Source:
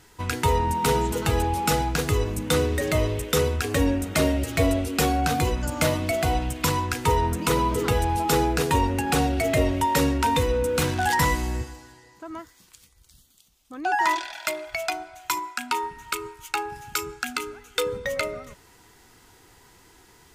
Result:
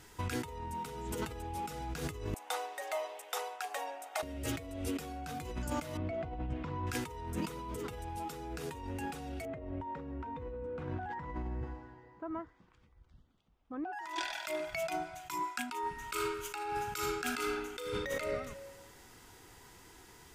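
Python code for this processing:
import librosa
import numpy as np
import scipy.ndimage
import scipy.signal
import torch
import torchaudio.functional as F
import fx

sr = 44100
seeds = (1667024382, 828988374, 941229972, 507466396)

y = fx.ladder_highpass(x, sr, hz=710.0, resonance_pct=75, at=(2.34, 4.23))
y = fx.spacing_loss(y, sr, db_at_10k=42, at=(5.97, 6.87))
y = fx.lowpass(y, sr, hz=1300.0, slope=12, at=(9.45, 13.93))
y = fx.peak_eq(y, sr, hz=160.0, db=14.0, octaves=0.77, at=(14.6, 15.43))
y = fx.reverb_throw(y, sr, start_s=15.95, length_s=2.24, rt60_s=1.3, drr_db=3.5)
y = fx.notch(y, sr, hz=4200.0, q=24.0)
y = fx.over_compress(y, sr, threshold_db=-31.0, ratio=-1.0)
y = F.gain(torch.from_numpy(y), -8.0).numpy()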